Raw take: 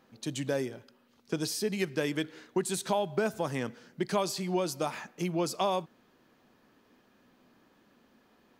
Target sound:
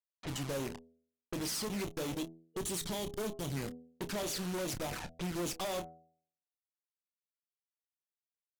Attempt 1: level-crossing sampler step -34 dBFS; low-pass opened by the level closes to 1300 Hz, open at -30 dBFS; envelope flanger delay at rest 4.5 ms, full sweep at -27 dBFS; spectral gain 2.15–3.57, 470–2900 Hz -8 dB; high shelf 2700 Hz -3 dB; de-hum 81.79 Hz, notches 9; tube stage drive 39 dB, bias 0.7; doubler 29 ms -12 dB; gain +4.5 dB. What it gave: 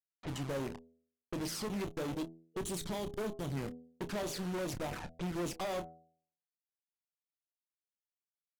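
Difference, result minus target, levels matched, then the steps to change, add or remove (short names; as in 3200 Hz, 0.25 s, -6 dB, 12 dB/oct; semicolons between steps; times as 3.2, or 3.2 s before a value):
4000 Hz band -3.0 dB
change: high shelf 2700 Hz +6.5 dB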